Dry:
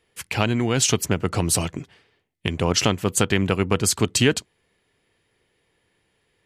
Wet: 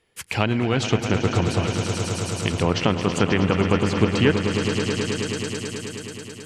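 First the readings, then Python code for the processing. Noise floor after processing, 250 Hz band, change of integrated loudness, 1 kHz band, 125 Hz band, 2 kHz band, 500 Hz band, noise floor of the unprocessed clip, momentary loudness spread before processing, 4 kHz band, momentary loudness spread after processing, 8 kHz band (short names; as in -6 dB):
-39 dBFS, +2.5 dB, -1.0 dB, +2.0 dB, +2.5 dB, +1.5 dB, +2.5 dB, -70 dBFS, 10 LU, -1.5 dB, 10 LU, -8.5 dB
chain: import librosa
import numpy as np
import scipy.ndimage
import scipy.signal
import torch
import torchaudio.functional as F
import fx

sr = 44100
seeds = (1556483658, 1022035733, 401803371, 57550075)

y = fx.echo_swell(x, sr, ms=107, loudest=5, wet_db=-11.0)
y = fx.env_lowpass_down(y, sr, base_hz=2600.0, full_db=-15.0)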